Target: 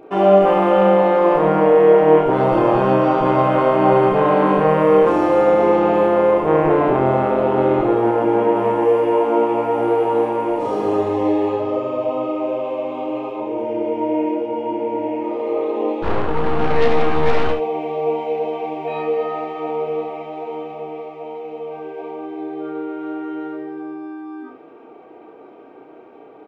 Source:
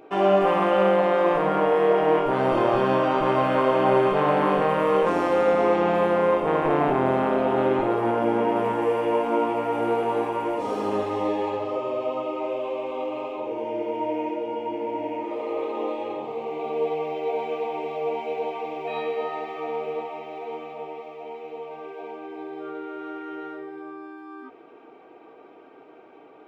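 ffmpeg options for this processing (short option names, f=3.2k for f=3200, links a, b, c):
-filter_complex "[0:a]asplit=3[a][b][c];[a]afade=t=out:st=16.02:d=0.02[d];[b]aeval=exprs='0.168*(cos(1*acos(clip(val(0)/0.168,-1,1)))-cos(1*PI/2))+0.0596*(cos(8*acos(clip(val(0)/0.168,-1,1)))-cos(8*PI/2))':c=same,afade=t=in:st=16.02:d=0.02,afade=t=out:st=17.51:d=0.02[e];[c]afade=t=in:st=17.51:d=0.02[f];[d][e][f]amix=inputs=3:normalize=0,tiltshelf=f=1.2k:g=4,aecho=1:1:32|71:0.473|0.355,volume=2.5dB"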